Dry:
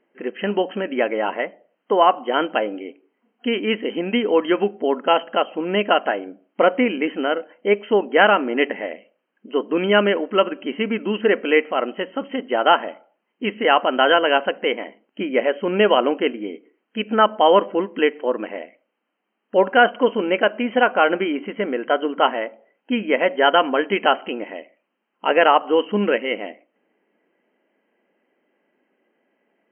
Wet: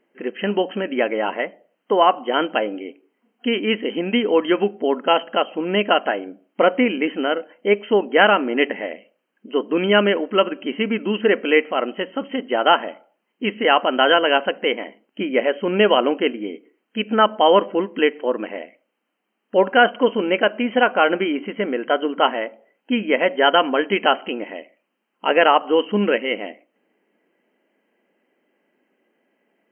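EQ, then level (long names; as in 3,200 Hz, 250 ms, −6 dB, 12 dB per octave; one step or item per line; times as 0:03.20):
low-shelf EQ 480 Hz +4 dB
high-shelf EQ 2,700 Hz +7.5 dB
−2.0 dB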